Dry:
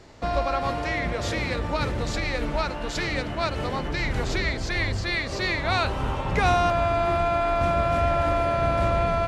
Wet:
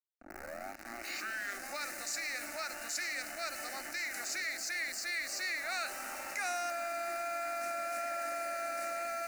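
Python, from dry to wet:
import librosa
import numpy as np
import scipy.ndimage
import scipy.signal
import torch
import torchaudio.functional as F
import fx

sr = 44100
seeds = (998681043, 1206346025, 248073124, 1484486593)

p1 = fx.tape_start_head(x, sr, length_s=1.84)
p2 = scipy.signal.sosfilt(scipy.signal.butter(4, 220.0, 'highpass', fs=sr, output='sos'), p1)
p3 = np.diff(p2, prepend=0.0)
p4 = fx.quant_dither(p3, sr, seeds[0], bits=8, dither='none')
p5 = p3 + F.gain(torch.from_numpy(p4), -5.0).numpy()
p6 = np.sign(p5) * np.maximum(np.abs(p5) - 10.0 ** (-54.0 / 20.0), 0.0)
p7 = fx.fixed_phaser(p6, sr, hz=670.0, stages=8)
y = fx.env_flatten(p7, sr, amount_pct=50)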